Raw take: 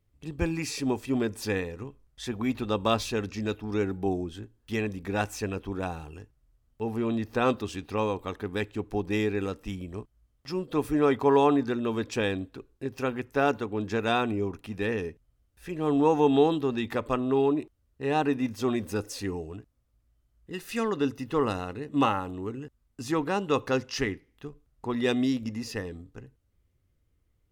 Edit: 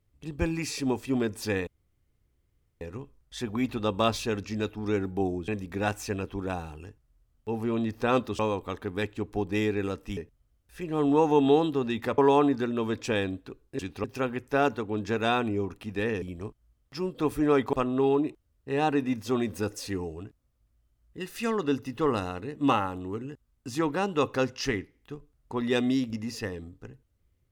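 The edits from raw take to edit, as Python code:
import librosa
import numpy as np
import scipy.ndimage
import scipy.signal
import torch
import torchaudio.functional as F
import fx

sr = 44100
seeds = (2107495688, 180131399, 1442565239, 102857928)

y = fx.edit(x, sr, fx.insert_room_tone(at_s=1.67, length_s=1.14),
    fx.cut(start_s=4.34, length_s=0.47),
    fx.move(start_s=7.72, length_s=0.25, to_s=12.87),
    fx.swap(start_s=9.75, length_s=1.51, other_s=15.05, other_length_s=2.01), tone=tone)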